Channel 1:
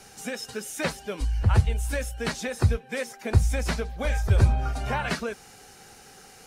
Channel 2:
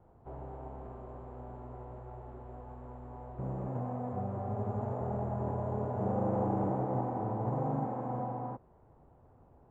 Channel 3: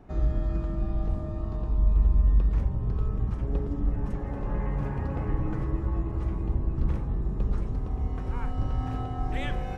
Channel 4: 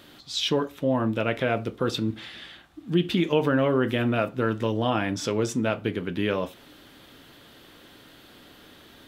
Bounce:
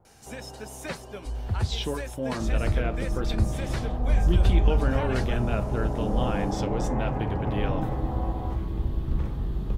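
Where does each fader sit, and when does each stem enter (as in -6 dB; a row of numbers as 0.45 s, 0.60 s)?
-7.0 dB, +1.0 dB, -0.5 dB, -7.0 dB; 0.05 s, 0.00 s, 2.30 s, 1.35 s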